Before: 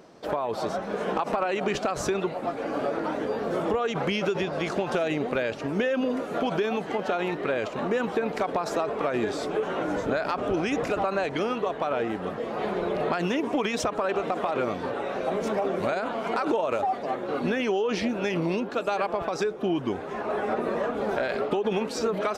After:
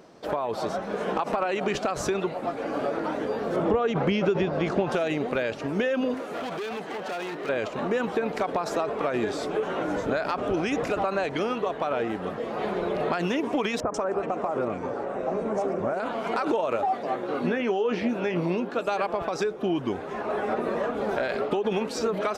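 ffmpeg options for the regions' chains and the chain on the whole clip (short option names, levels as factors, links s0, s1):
-filter_complex "[0:a]asettb=1/sr,asplit=3[s0][s1][s2];[s0]atrim=end=3.564[s3];[s1]atrim=start=3.56:end=4.9,asetpts=PTS-STARTPTS,afade=t=in:d=0.004:c=qsin,afade=t=out:st=1.336:d=0.004:c=qsin,lowpass=f=3100:p=1,lowshelf=f=470:g=5.5[s4];[s2]atrim=start=4.896[s5];[s3][s4]acrossfade=d=0.004:c1=hsin:c2=qsin[s6];[s6][s5]acrossfade=d=0.004:c1=qsin:c2=hsin,asettb=1/sr,asplit=3[s7][s8][s9];[s7]atrim=end=6.144[s10];[s8]atrim=start=6.14:end=7.49,asetpts=PTS-STARTPTS,afade=t=in:d=0.004:c=qsin,afade=t=out:st=1.346:d=0.004:c=qsin,volume=26.6,asoftclip=hard,volume=0.0376,highpass=f=260:p=1[s11];[s9]atrim=start=7.486[s12];[s10][s11]acrossfade=d=0.004:c1=hsin:c2=qsin[s13];[s13][s12]acrossfade=d=0.004:c1=qsin:c2=hsin,asettb=1/sr,asplit=3[s14][s15][s16];[s14]atrim=end=13.804[s17];[s15]atrim=start=13.8:end=16,asetpts=PTS-STARTPTS,afade=t=in:d=0.004:c=qsin,afade=t=out:st=2.196:d=0.004:c=qsin,lowpass=f=8600:w=0.5412,lowpass=f=8600:w=1.3066,equalizer=f=3700:w=1.2:g=-13,acrossover=split=1900[s18][s19];[s19]adelay=140[s20];[s18][s20]amix=inputs=2:normalize=0,atrim=end_sample=97020[s21];[s16]atrim=start=15.996[s22];[s17][s21]acrossfade=d=0.004:c1=hsin:c2=qsin[s23];[s23][s22]acrossfade=d=0.004:c1=qsin:c2=hsin,asettb=1/sr,asplit=3[s24][s25][s26];[s24]atrim=end=16.724[s27];[s25]atrim=start=16.72:end=18.79,asetpts=PTS-STARTPTS,afade=t=in:d=0.004:c=qsin,afade=t=out:st=2.066:d=0.004:c=qsin,acrossover=split=2800[s28][s29];[s29]acompressor=threshold=0.00355:ratio=4:attack=1:release=60[s30];[s28][s30]amix=inputs=2:normalize=0,highpass=94,asplit=2[s31][s32];[s32]adelay=17,volume=0.282[s33];[s31][s33]amix=inputs=2:normalize=0,atrim=end_sample=91287[s34];[s26]atrim=start=18.786[s35];[s27][s34]acrossfade=d=0.004:c1=hsin:c2=qsin[s36];[s36][s35]acrossfade=d=0.004:c1=qsin:c2=hsin"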